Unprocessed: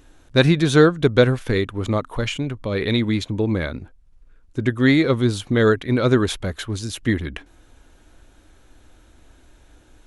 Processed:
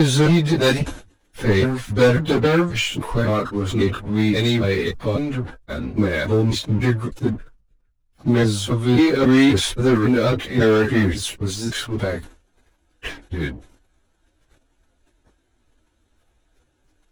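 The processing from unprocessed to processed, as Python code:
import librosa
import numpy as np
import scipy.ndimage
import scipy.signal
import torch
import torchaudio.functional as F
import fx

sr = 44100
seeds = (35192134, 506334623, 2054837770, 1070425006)

y = fx.block_reorder(x, sr, ms=160.0, group=5)
y = fx.leveller(y, sr, passes=3)
y = fx.stretch_vocoder_free(y, sr, factor=1.7)
y = fx.sustainer(y, sr, db_per_s=130.0)
y = y * librosa.db_to_amplitude(-4.5)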